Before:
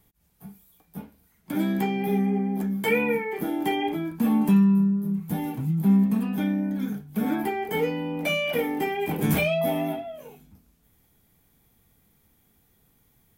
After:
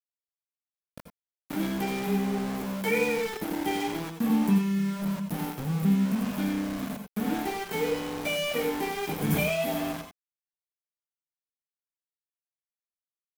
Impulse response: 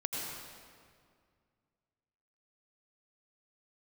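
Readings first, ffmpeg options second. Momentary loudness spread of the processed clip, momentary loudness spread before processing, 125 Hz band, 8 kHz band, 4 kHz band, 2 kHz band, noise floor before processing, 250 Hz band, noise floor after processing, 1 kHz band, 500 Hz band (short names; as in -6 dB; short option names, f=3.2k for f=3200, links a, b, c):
8 LU, 10 LU, -4.5 dB, +3.5 dB, 0.0 dB, -2.5 dB, -65 dBFS, -4.5 dB, under -85 dBFS, -3.0 dB, -3.0 dB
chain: -filter_complex "[0:a]aeval=exprs='val(0)*gte(abs(val(0)),0.0376)':c=same[a];[1:a]atrim=start_sample=2205,atrim=end_sample=4410[b];[a][b]afir=irnorm=-1:irlink=0,volume=-3dB"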